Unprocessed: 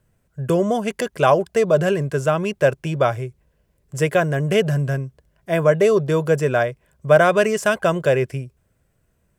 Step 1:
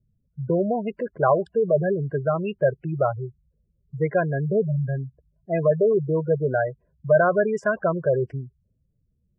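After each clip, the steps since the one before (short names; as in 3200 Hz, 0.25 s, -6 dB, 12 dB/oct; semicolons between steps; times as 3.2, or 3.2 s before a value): spectral gate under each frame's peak -15 dB strong; low-pass opened by the level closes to 330 Hz, open at -13 dBFS; gain -3.5 dB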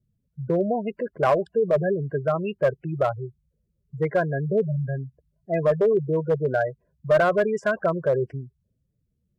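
one-sided clip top -14.5 dBFS; low shelf 79 Hz -8 dB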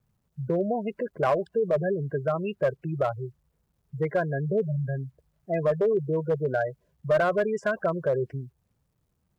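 in parallel at -1.5 dB: compressor 8:1, threshold -28 dBFS, peak gain reduction 13.5 dB; on the sum: bit-crush 12-bit; gain -5.5 dB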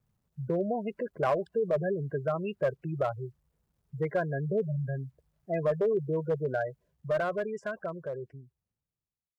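ending faded out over 3.09 s; gain -3.5 dB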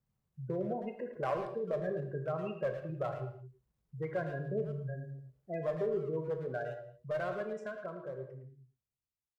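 speakerphone echo 0.11 s, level -9 dB; reverb, pre-delay 4 ms, DRR 5.5 dB; gain -7.5 dB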